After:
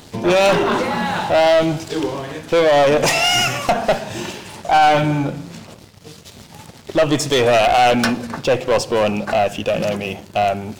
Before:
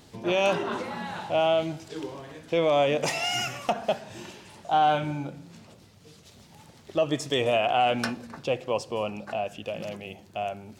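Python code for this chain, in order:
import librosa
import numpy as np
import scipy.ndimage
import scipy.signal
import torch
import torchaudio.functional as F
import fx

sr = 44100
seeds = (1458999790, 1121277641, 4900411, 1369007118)

p1 = fx.diode_clip(x, sr, knee_db=-26.5)
p2 = fx.rider(p1, sr, range_db=3, speed_s=2.0)
p3 = p1 + F.gain(torch.from_numpy(p2), -2.0).numpy()
p4 = fx.leveller(p3, sr, passes=2)
y = F.gain(torch.from_numpy(p4), 2.5).numpy()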